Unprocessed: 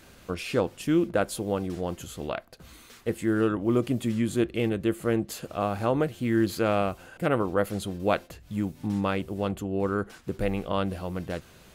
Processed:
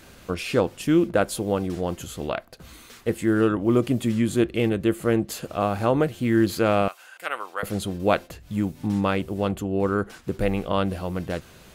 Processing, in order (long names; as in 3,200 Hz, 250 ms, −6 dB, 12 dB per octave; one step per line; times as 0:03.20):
0:06.88–0:07.63: high-pass filter 1,200 Hz 12 dB per octave
level +4 dB